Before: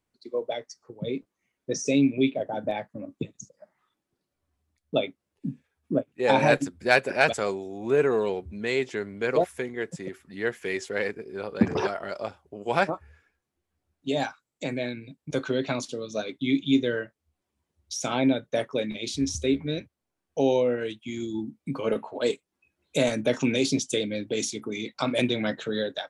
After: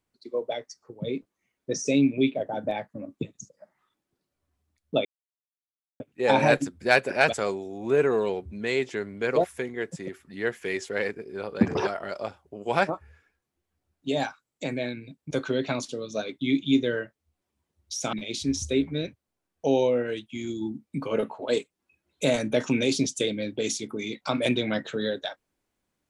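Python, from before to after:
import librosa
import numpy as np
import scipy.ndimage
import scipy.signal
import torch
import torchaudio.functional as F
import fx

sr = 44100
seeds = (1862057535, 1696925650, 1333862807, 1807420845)

y = fx.edit(x, sr, fx.silence(start_s=5.05, length_s=0.95),
    fx.cut(start_s=18.13, length_s=0.73), tone=tone)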